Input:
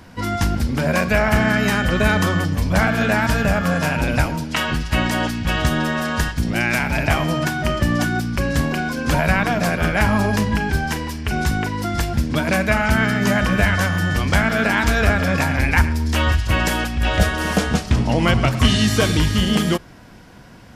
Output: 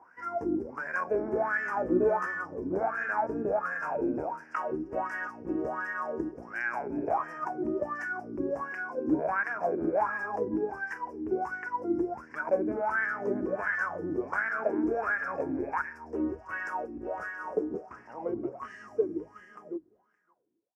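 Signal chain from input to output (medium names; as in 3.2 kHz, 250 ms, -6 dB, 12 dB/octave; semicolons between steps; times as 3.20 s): fade out at the end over 5.38 s; 1.75–2.26 s: doubling 16 ms -2.5 dB; delay 568 ms -23 dB; wah-wah 1.4 Hz 310–1800 Hz, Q 7.5; FFT filter 210 Hz 0 dB, 380 Hz +9 dB, 620 Hz +1 dB, 970 Hz +3 dB, 2.6 kHz -8 dB, 3.8 kHz -29 dB, 5.3 kHz +2 dB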